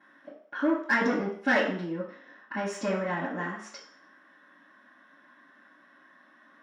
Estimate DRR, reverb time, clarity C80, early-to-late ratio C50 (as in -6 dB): -16.0 dB, 0.60 s, 9.0 dB, 5.0 dB